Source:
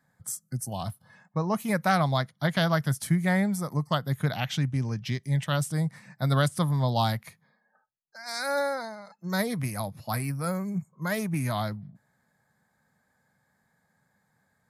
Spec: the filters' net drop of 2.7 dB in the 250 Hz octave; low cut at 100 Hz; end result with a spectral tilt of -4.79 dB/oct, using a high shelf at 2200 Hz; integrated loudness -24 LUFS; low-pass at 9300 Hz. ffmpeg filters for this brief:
-af "highpass=100,lowpass=9.3k,equalizer=f=250:t=o:g=-4,highshelf=f=2.2k:g=4,volume=5.5dB"

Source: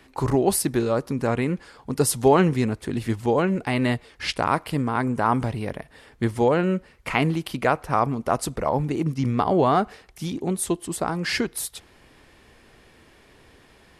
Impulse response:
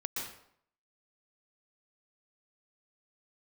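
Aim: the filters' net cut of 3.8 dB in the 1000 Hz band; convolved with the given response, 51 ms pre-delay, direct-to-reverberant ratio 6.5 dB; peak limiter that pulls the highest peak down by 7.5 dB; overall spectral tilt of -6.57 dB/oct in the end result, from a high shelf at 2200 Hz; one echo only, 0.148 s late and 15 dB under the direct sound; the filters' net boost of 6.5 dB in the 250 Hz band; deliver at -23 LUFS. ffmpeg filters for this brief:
-filter_complex "[0:a]equalizer=f=250:t=o:g=8.5,equalizer=f=1k:t=o:g=-5,highshelf=f=2.2k:g=-3.5,alimiter=limit=-10.5dB:level=0:latency=1,aecho=1:1:148:0.178,asplit=2[a][b];[1:a]atrim=start_sample=2205,adelay=51[c];[b][c]afir=irnorm=-1:irlink=0,volume=-9dB[d];[a][d]amix=inputs=2:normalize=0,volume=-2dB"

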